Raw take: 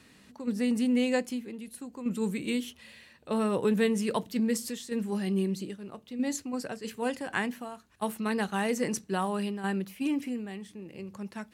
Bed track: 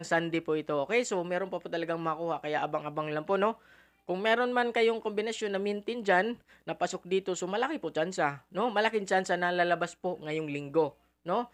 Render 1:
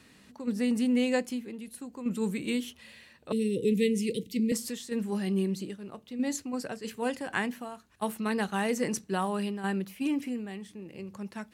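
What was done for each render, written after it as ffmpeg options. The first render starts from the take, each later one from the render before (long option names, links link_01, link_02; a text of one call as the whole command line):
ffmpeg -i in.wav -filter_complex "[0:a]asettb=1/sr,asplit=3[link_01][link_02][link_03];[link_01]atrim=end=3.324[link_04];[link_02]atrim=start=3.32:end=4.52,asetpts=PTS-STARTPTS,afade=type=in:duration=0.004:curve=qsin,afade=type=out:start_time=1.196:duration=0.004:curve=qsin,asuperstop=centerf=1000:order=20:qfactor=0.68[link_05];[link_03]atrim=start=4.516[link_06];[link_04][link_05]acrossfade=duration=0.004:curve1=hsin:curve2=qsin[link_07];[link_07][link_06]acrossfade=duration=0.004:curve1=qsin:curve2=hsin" out.wav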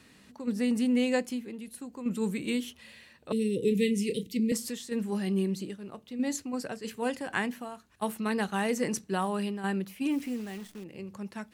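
ffmpeg -i in.wav -filter_complex "[0:a]asettb=1/sr,asplit=3[link_01][link_02][link_03];[link_01]atrim=end=3.604[link_04];[link_02]atrim=start=3.6:end=4.27,asetpts=PTS-STARTPTS,afade=type=in:duration=0.004:curve=qsin,afade=type=out:start_time=0.666:duration=0.004:curve=qsin,asplit=2[link_05][link_06];[link_06]adelay=30,volume=-9.5dB[link_07];[link_05][link_07]amix=inputs=2:normalize=0,atrim=end_sample=29547[link_08];[link_03]atrim=start=4.266[link_09];[link_04][link_08]acrossfade=duration=0.004:curve1=hsin:curve2=qsin[link_10];[link_10][link_09]acrossfade=duration=0.004:curve1=qsin:curve2=hsin,asettb=1/sr,asplit=3[link_11][link_12][link_13];[link_11]atrim=end=10.114[link_14];[link_12]atrim=start=10.11:end=10.84,asetpts=PTS-STARTPTS,afade=type=in:duration=0.004:curve=qsin,afade=type=out:start_time=0.726:duration=0.004:curve=qsin,acrusher=bits=9:dc=4:mix=0:aa=0.000001[link_15];[link_13]atrim=start=10.836[link_16];[link_14][link_15]acrossfade=duration=0.004:curve1=hsin:curve2=qsin[link_17];[link_17][link_16]acrossfade=duration=0.004:curve1=qsin:curve2=hsin" out.wav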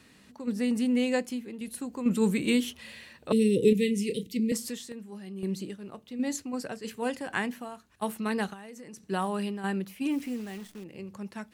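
ffmpeg -i in.wav -filter_complex "[0:a]asplit=3[link_01][link_02][link_03];[link_01]afade=type=out:start_time=8.52:duration=0.02[link_04];[link_02]acompressor=threshold=-42dB:ratio=10:attack=3.2:release=140:knee=1:detection=peak,afade=type=in:start_time=8.52:duration=0.02,afade=type=out:start_time=9.08:duration=0.02[link_05];[link_03]afade=type=in:start_time=9.08:duration=0.02[link_06];[link_04][link_05][link_06]amix=inputs=3:normalize=0,asplit=5[link_07][link_08][link_09][link_10][link_11];[link_07]atrim=end=1.612[link_12];[link_08]atrim=start=1.608:end=3.732,asetpts=PTS-STARTPTS,volume=5.5dB[link_13];[link_09]atrim=start=3.728:end=4.92,asetpts=PTS-STARTPTS,afade=type=out:start_time=1.042:duration=0.15:curve=log:silence=0.266073[link_14];[link_10]atrim=start=4.92:end=5.43,asetpts=PTS-STARTPTS,volume=-11.5dB[link_15];[link_11]atrim=start=5.43,asetpts=PTS-STARTPTS,afade=type=in:duration=0.15:curve=log:silence=0.266073[link_16];[link_12][link_13]acrossfade=duration=0.004:curve1=hsin:curve2=hsin[link_17];[link_14][link_15][link_16]concat=n=3:v=0:a=1[link_18];[link_17][link_18]acrossfade=duration=0.004:curve1=hsin:curve2=hsin" out.wav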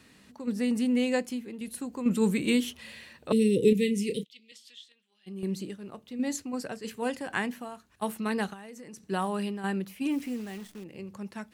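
ffmpeg -i in.wav -filter_complex "[0:a]asplit=3[link_01][link_02][link_03];[link_01]afade=type=out:start_time=4.23:duration=0.02[link_04];[link_02]bandpass=frequency=3300:width_type=q:width=4.5,afade=type=in:start_time=4.23:duration=0.02,afade=type=out:start_time=5.26:duration=0.02[link_05];[link_03]afade=type=in:start_time=5.26:duration=0.02[link_06];[link_04][link_05][link_06]amix=inputs=3:normalize=0" out.wav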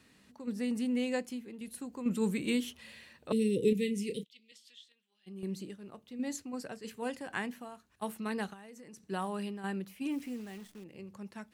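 ffmpeg -i in.wav -af "volume=-6dB" out.wav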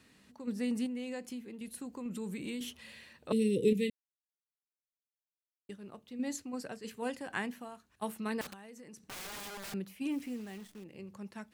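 ffmpeg -i in.wav -filter_complex "[0:a]asettb=1/sr,asplit=3[link_01][link_02][link_03];[link_01]atrim=end=0.864[link_04];[link_02]atrim=start=0.86:end=2.61,asetpts=PTS-STARTPTS,afade=type=in:duration=0.004:curve=qsin,afade=type=out:start_time=1.746:duration=0.004:curve=qsin,acompressor=threshold=-37dB:ratio=4:attack=3.2:release=140:knee=1:detection=peak[link_05];[link_03]atrim=start=2.606[link_06];[link_04][link_05]acrossfade=duration=0.004:curve1=hsin:curve2=qsin[link_07];[link_07][link_06]acrossfade=duration=0.004:curve1=qsin:curve2=hsin,asettb=1/sr,asplit=3[link_08][link_09][link_10];[link_08]atrim=end=8.414[link_11];[link_09]atrim=start=8.41:end=9.74,asetpts=PTS-STARTPTS,afade=type=in:duration=0.004:curve=qsin,afade=type=out:start_time=1.326:duration=0.004:curve=qsin,aeval=exprs='(mod(94.4*val(0)+1,2)-1)/94.4':channel_layout=same[link_12];[link_10]atrim=start=9.736[link_13];[link_11][link_12]acrossfade=duration=0.004:curve1=hsin:curve2=qsin[link_14];[link_14][link_13]acrossfade=duration=0.004:curve1=qsin:curve2=hsin,asplit=3[link_15][link_16][link_17];[link_15]atrim=end=3.9,asetpts=PTS-STARTPTS,afade=type=out:start_time=3.896:duration=0.004:curve=hsin[link_18];[link_16]atrim=start=3.9:end=5.69,asetpts=PTS-STARTPTS,volume=0[link_19];[link_17]atrim=start=5.69,asetpts=PTS-STARTPTS,afade=type=in:duration=0.004:curve=hsin[link_20];[link_18][link_19][link_20]concat=n=3:v=0:a=1" out.wav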